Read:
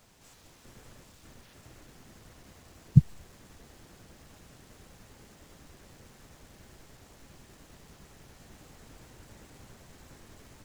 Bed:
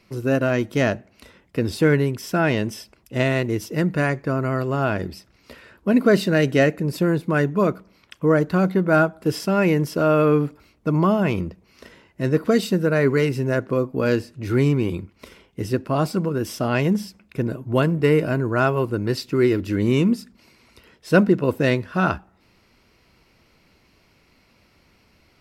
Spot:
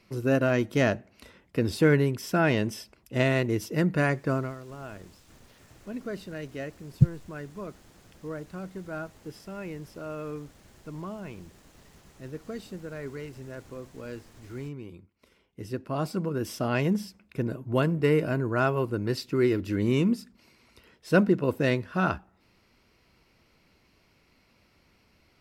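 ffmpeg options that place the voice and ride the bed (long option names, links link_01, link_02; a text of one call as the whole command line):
ffmpeg -i stem1.wav -i stem2.wav -filter_complex "[0:a]adelay=4050,volume=-1.5dB[link_01];[1:a]volume=10.5dB,afade=type=out:start_time=4.33:duration=0.22:silence=0.158489,afade=type=in:start_time=15.21:duration=1.25:silence=0.199526[link_02];[link_01][link_02]amix=inputs=2:normalize=0" out.wav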